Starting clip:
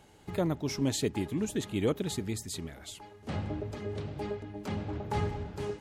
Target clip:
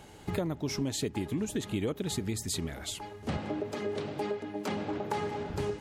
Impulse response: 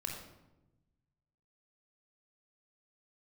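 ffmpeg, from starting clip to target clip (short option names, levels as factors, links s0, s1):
-filter_complex "[0:a]asettb=1/sr,asplit=3[s0][s1][s2];[s0]atrim=end=3.374[s3];[s1]atrim=start=3.37:end=5.5,asetpts=PTS-STARTPTS,afade=t=in:d=0.004:c=qsin,afade=t=out:st=2.126:d=0.004:c=qsin,highpass=230[s4];[s2]atrim=start=5.496[s5];[s3][s4]acrossfade=d=0.004:c1=hsin:c2=qsin[s6];[s6][s5]acrossfade=d=0.004:c1=qsin:c2=hsin,acompressor=threshold=0.0158:ratio=6,volume=2.24"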